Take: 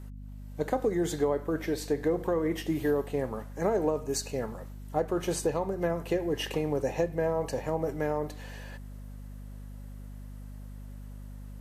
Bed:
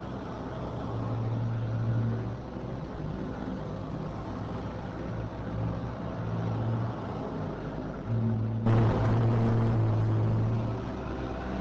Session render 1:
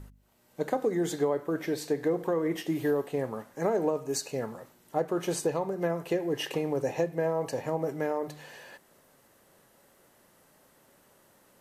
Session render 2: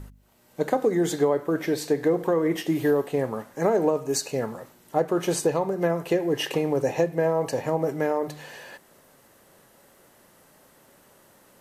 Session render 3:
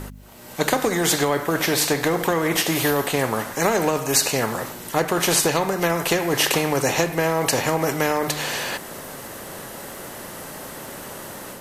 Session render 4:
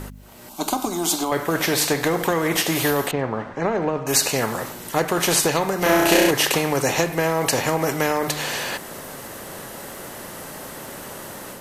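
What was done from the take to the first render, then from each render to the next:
de-hum 50 Hz, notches 5
gain +5.5 dB
AGC gain up to 5 dB; spectral compressor 2:1
0.49–1.32 fixed phaser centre 490 Hz, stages 6; 3.11–4.07 tape spacing loss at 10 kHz 35 dB; 5.79–6.31 flutter echo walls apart 5.6 m, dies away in 1.4 s

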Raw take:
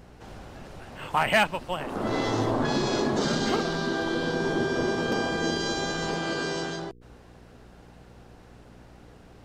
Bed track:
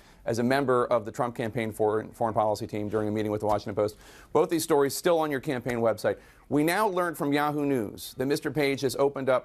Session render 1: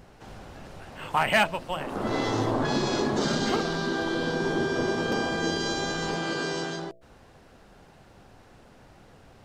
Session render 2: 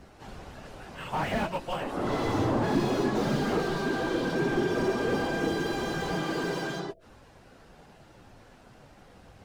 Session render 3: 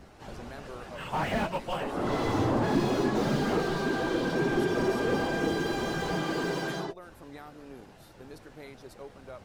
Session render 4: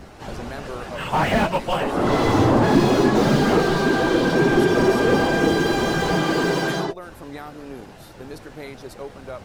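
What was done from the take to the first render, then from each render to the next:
de-hum 60 Hz, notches 11
phase scrambler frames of 50 ms; slew limiter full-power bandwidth 40 Hz
add bed track -21 dB
gain +10 dB

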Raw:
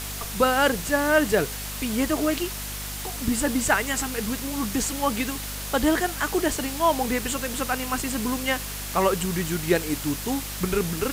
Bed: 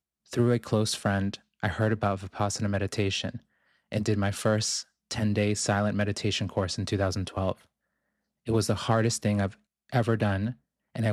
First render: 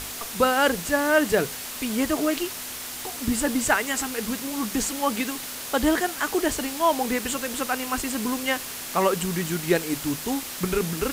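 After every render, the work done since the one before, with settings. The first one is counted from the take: notches 50/100/150/200 Hz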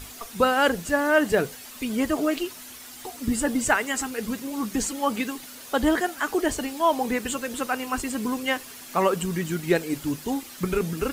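denoiser 10 dB, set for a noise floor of -35 dBFS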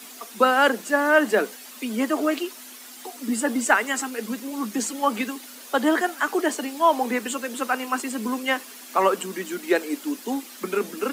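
steep high-pass 200 Hz 96 dB/oct; dynamic EQ 1200 Hz, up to +4 dB, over -32 dBFS, Q 0.82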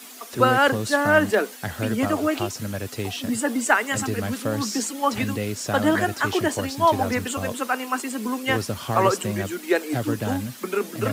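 add bed -2 dB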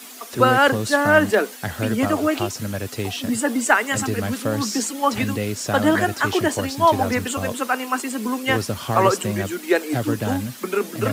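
gain +2.5 dB; limiter -3 dBFS, peak gain reduction 0.5 dB

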